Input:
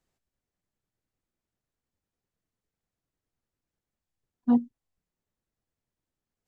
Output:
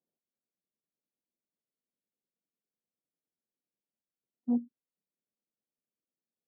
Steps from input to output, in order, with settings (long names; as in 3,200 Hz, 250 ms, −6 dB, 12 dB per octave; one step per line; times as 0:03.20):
Chebyshev band-pass filter 200–600 Hz, order 2
level −7 dB